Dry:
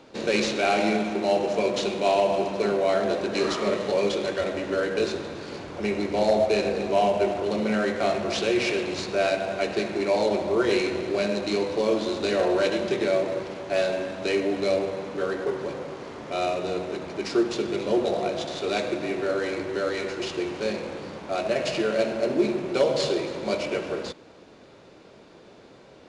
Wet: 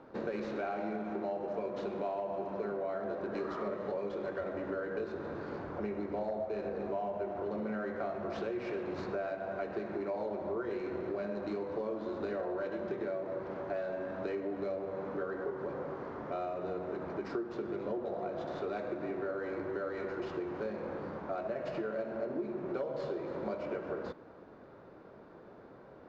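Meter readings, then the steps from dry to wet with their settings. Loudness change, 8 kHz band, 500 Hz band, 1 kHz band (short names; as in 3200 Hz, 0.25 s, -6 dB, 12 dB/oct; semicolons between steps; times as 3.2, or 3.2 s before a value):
-12.0 dB, under -30 dB, -11.5 dB, -11.5 dB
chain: resonant high shelf 2000 Hz -9.5 dB, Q 1.5; compressor, threshold -30 dBFS, peak gain reduction 13.5 dB; air absorption 150 m; gain -3.5 dB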